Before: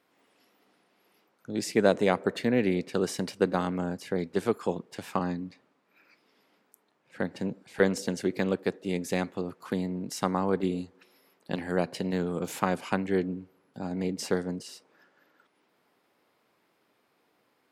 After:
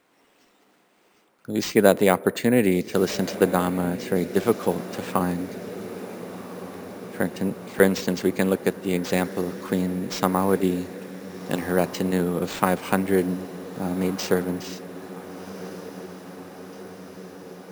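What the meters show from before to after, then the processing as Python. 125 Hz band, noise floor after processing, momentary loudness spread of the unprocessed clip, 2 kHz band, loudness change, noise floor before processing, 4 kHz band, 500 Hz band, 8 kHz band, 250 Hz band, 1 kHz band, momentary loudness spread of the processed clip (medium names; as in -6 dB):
+6.0 dB, -61 dBFS, 10 LU, +6.0 dB, +6.0 dB, -71 dBFS, +6.0 dB, +6.0 dB, +7.0 dB, +6.0 dB, +6.0 dB, 18 LU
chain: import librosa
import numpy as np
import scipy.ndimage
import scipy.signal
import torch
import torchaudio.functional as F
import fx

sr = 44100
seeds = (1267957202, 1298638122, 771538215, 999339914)

y = np.repeat(x[::4], 4)[:len(x)]
y = fx.echo_diffused(y, sr, ms=1460, feedback_pct=70, wet_db=-14.5)
y = F.gain(torch.from_numpy(y), 6.0).numpy()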